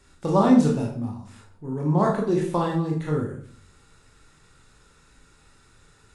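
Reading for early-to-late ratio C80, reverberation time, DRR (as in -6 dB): 9.5 dB, 0.50 s, -2.0 dB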